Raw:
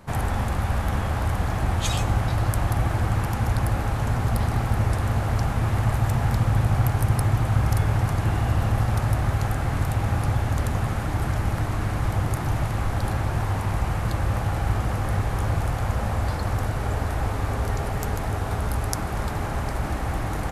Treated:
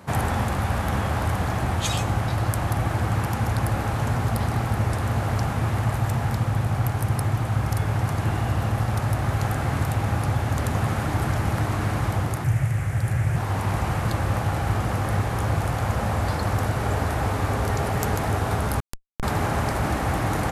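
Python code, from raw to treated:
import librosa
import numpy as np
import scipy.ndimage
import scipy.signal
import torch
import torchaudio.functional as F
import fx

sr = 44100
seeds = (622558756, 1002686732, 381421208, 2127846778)

y = fx.graphic_eq(x, sr, hz=(125, 250, 1000, 2000, 4000, 8000), db=(11, -7, -7, 7, -8, 5), at=(12.44, 13.36))
y = fx.rider(y, sr, range_db=10, speed_s=0.5)
y = scipy.signal.sosfilt(scipy.signal.butter(2, 83.0, 'highpass', fs=sr, output='sos'), y)
y = fx.schmitt(y, sr, flips_db=-14.0, at=(18.8, 19.23))
y = y * 10.0 ** (1.5 / 20.0)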